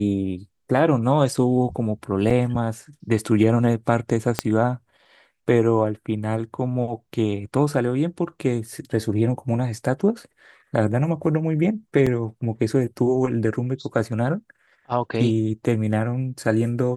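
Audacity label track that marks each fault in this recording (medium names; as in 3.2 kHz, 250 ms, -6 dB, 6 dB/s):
2.300000	2.310000	dropout 5.1 ms
4.390000	4.390000	pop -4 dBFS
12.060000	12.070000	dropout 5.1 ms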